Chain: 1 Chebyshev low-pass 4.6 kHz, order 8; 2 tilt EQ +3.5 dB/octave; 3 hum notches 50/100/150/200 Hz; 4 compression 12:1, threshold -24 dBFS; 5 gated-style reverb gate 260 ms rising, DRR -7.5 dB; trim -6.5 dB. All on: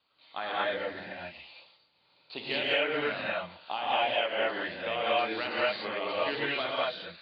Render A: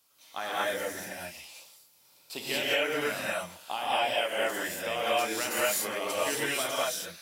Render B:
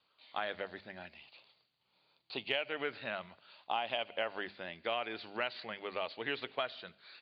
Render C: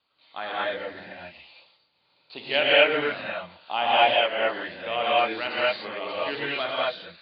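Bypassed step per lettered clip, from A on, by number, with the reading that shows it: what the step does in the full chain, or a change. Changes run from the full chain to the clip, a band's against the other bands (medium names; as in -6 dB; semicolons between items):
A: 1, momentary loudness spread change -1 LU; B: 5, crest factor change +5.5 dB; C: 4, mean gain reduction 2.0 dB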